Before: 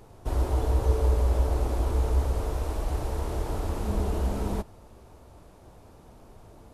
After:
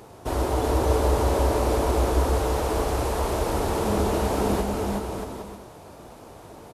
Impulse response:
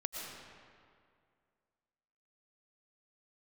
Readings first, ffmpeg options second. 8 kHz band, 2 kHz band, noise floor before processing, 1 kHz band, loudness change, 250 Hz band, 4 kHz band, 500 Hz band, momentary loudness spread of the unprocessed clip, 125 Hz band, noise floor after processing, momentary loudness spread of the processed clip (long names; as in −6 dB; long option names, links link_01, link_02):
+10.5 dB, +10.5 dB, −52 dBFS, +10.5 dB, +4.0 dB, +8.5 dB, +10.5 dB, +9.5 dB, 7 LU, +0.5 dB, −46 dBFS, 10 LU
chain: -filter_complex "[0:a]highpass=frequency=210:poles=1,asplit=2[link_01][link_02];[link_02]aecho=0:1:370|629|810.3|937.2|1026:0.631|0.398|0.251|0.158|0.1[link_03];[link_01][link_03]amix=inputs=2:normalize=0,volume=8.5dB"